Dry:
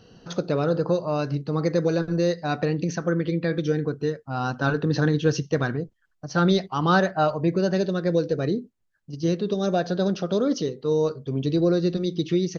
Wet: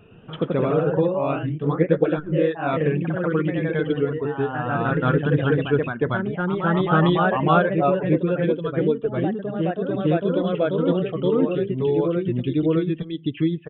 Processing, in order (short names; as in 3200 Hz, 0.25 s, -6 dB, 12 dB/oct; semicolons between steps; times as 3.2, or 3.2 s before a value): reverb removal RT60 1.8 s; echoes that change speed 99 ms, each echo +1 st, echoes 3; downsampling 8000 Hz; speed mistake 48 kHz file played as 44.1 kHz; gain +2 dB